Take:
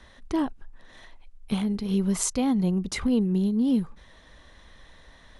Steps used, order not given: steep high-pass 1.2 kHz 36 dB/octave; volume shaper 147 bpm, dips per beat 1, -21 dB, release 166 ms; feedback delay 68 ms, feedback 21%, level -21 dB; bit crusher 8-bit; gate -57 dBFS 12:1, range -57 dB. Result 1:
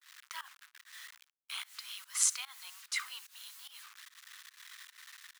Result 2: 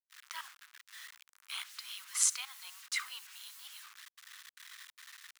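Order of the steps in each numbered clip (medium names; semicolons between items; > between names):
feedback delay > bit crusher > steep high-pass > gate > volume shaper; feedback delay > volume shaper > bit crusher > gate > steep high-pass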